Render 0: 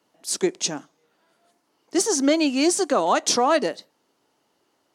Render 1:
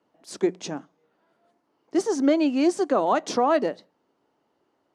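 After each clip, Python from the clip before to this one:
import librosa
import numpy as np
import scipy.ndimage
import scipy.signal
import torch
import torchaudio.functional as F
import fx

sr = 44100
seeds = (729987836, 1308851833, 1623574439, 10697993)

y = fx.lowpass(x, sr, hz=1200.0, slope=6)
y = fx.hum_notches(y, sr, base_hz=60, count=3)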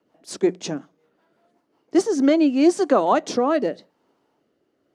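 y = fx.rotary_switch(x, sr, hz=5.5, then_hz=0.85, switch_at_s=1.71)
y = y * librosa.db_to_amplitude(5.5)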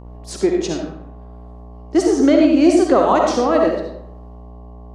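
y = fx.dmg_buzz(x, sr, base_hz=60.0, harmonics=19, level_db=-40.0, tilt_db=-6, odd_only=False)
y = fx.rev_freeverb(y, sr, rt60_s=0.74, hf_ratio=0.65, predelay_ms=25, drr_db=1.0)
y = y * librosa.db_to_amplitude(2.0)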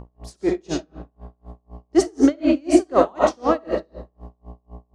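y = x * 10.0 ** (-35 * (0.5 - 0.5 * np.cos(2.0 * np.pi * 4.0 * np.arange(len(x)) / sr)) / 20.0)
y = y * librosa.db_to_amplitude(2.0)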